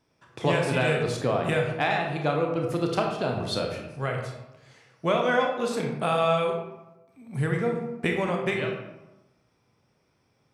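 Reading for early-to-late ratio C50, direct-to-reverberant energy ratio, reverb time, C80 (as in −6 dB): 4.0 dB, 1.0 dB, 1.0 s, 6.5 dB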